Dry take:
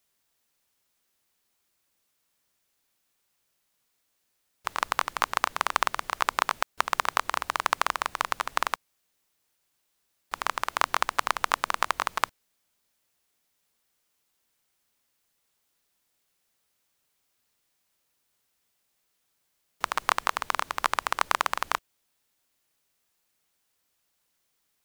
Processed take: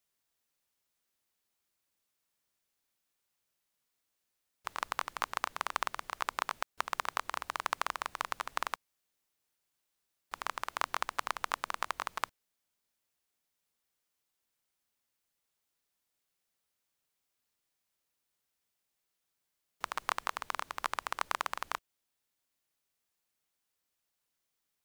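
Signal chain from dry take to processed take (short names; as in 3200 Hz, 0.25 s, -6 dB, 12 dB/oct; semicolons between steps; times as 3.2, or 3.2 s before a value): vocal rider 2 s; gain -8.5 dB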